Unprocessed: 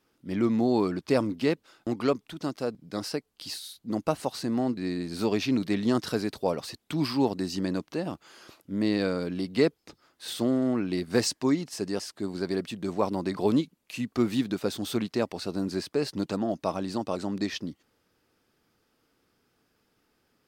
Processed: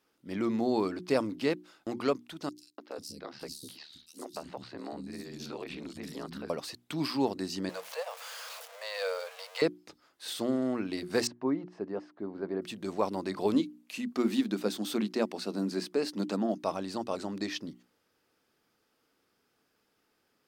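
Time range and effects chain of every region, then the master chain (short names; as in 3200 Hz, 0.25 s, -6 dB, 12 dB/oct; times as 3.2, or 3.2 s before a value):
2.49–6.5 ring modulator 37 Hz + three bands offset in time highs, mids, lows 0.29/0.49 s, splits 270/4000 Hz + compressor 4:1, threshold -32 dBFS
7.69–9.62 zero-crossing step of -36.5 dBFS + Chebyshev high-pass 460 Hz, order 10
11.27–12.62 LPF 1200 Hz + low shelf 79 Hz -10.5 dB
13.54–16.58 resonant low shelf 160 Hz -7.5 dB, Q 3 + notches 60/120/180/240 Hz
whole clip: low shelf 150 Hz -10 dB; notches 60/120/180/240/300/360 Hz; gain -2 dB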